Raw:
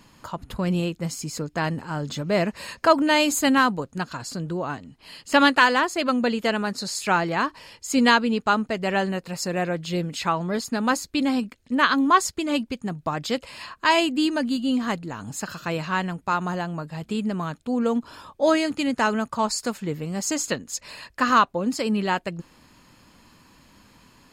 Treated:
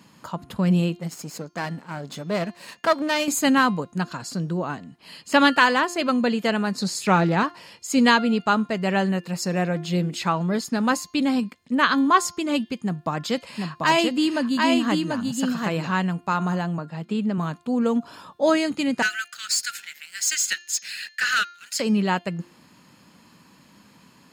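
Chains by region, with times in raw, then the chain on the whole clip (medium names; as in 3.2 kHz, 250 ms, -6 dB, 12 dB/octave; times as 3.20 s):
0.99–3.28 s: partial rectifier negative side -12 dB + peaking EQ 61 Hz -7.5 dB 1.6 oct + transient shaper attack 0 dB, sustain -5 dB
6.77–7.43 s: bass shelf 440 Hz +6 dB + loudspeaker Doppler distortion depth 0.12 ms
12.76–15.92 s: delay 739 ms -3.5 dB + hard clipper -9.5 dBFS
16.78–17.38 s: high-pass 150 Hz + treble shelf 6.4 kHz -12 dB
19.02–21.80 s: steep high-pass 1.4 kHz 96 dB/octave + waveshaping leveller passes 2
whole clip: high-pass 120 Hz 12 dB/octave; peaking EQ 180 Hz +6 dB 0.57 oct; de-hum 349.7 Hz, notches 19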